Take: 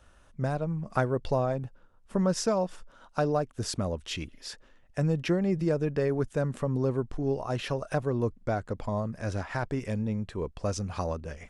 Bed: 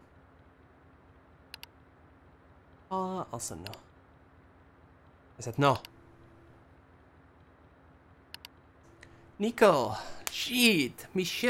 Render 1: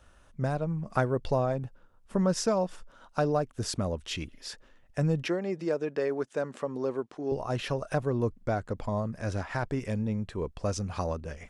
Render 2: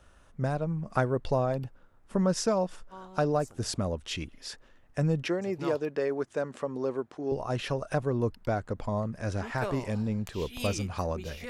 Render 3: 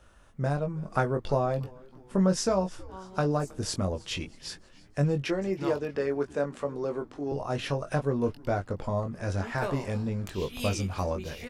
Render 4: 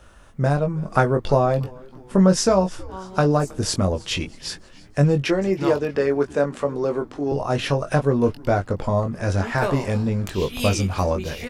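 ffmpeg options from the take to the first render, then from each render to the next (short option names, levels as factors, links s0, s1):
-filter_complex "[0:a]asettb=1/sr,asplit=3[s0][s1][s2];[s0]atrim=end=5.284[s3];[s1]atrim=start=5.28:end=7.32,asetpts=PTS-STARTPTS,afade=t=in:d=0.004:c=qsin,afade=t=out:st=2.036:d=0.004:c=qsin,highpass=320,lowpass=7800[s4];[s2]atrim=start=7.316[s5];[s3][s4]acrossfade=d=0.004:c1=hsin:c2=qsin[s6];[s6][s5]acrossfade=d=0.004:c1=qsin:c2=hsin"
-filter_complex "[1:a]volume=0.211[s0];[0:a][s0]amix=inputs=2:normalize=0"
-filter_complex "[0:a]asplit=2[s0][s1];[s1]adelay=21,volume=0.501[s2];[s0][s2]amix=inputs=2:normalize=0,asplit=5[s3][s4][s5][s6][s7];[s4]adelay=318,afreqshift=-130,volume=0.0708[s8];[s5]adelay=636,afreqshift=-260,volume=0.0403[s9];[s6]adelay=954,afreqshift=-390,volume=0.0229[s10];[s7]adelay=1272,afreqshift=-520,volume=0.0132[s11];[s3][s8][s9][s10][s11]amix=inputs=5:normalize=0"
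-af "volume=2.66"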